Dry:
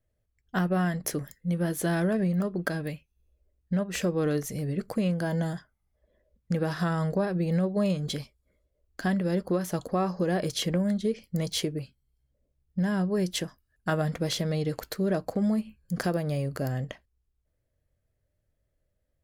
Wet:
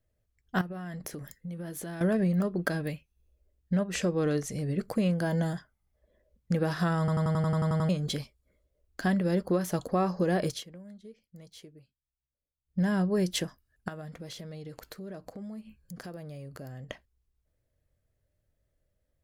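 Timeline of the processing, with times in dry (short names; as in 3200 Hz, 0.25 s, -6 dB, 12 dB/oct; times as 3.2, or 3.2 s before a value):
0.61–2.01 compressor 16:1, threshold -35 dBFS
3.94–4.7 Chebyshev low-pass 8300 Hz
6.99 stutter in place 0.09 s, 10 plays
10.48–12.8 dip -21 dB, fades 0.16 s
13.88–16.9 compressor 3:1, threshold -44 dBFS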